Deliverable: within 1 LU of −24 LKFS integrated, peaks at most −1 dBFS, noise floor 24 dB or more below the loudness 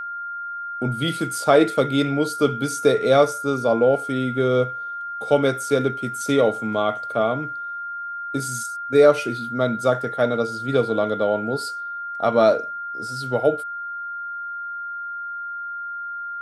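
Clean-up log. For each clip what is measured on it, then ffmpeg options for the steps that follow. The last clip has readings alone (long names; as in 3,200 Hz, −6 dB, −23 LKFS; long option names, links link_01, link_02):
interfering tone 1,400 Hz; level of the tone −28 dBFS; integrated loudness −22.5 LKFS; sample peak −3.0 dBFS; target loudness −24.0 LKFS
→ -af "bandreject=frequency=1400:width=30"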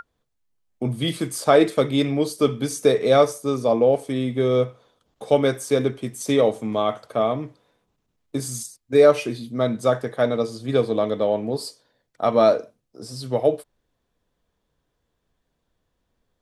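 interfering tone none found; integrated loudness −21.5 LKFS; sample peak −4.0 dBFS; target loudness −24.0 LKFS
→ -af "volume=-2.5dB"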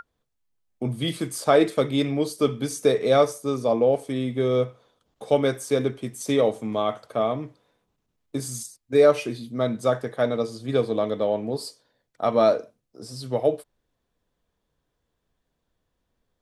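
integrated loudness −24.0 LKFS; sample peak −6.5 dBFS; background noise floor −78 dBFS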